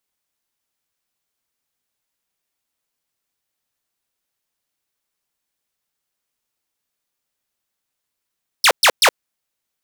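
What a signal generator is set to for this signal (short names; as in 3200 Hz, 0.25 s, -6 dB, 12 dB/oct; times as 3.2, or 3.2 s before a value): burst of laser zaps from 5900 Hz, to 410 Hz, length 0.07 s saw, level -6 dB, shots 3, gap 0.12 s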